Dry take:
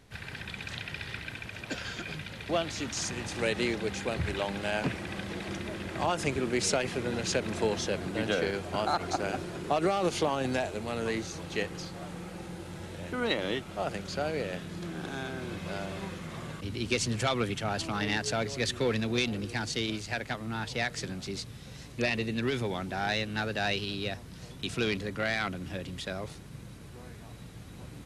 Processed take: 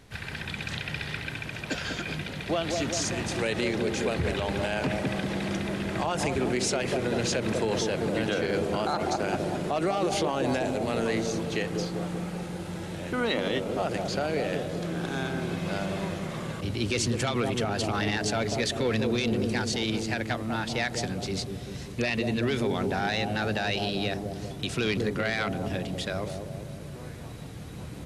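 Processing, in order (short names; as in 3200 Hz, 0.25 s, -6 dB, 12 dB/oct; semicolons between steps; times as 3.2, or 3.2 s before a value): analogue delay 0.193 s, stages 1024, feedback 60%, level -5 dB; limiter -22.5 dBFS, peak gain reduction 8.5 dB; gain +4.5 dB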